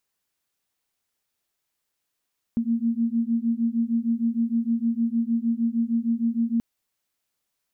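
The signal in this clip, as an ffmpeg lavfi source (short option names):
-f lavfi -i "aevalsrc='0.0631*(sin(2*PI*228*t)+sin(2*PI*234.5*t))':d=4.03:s=44100"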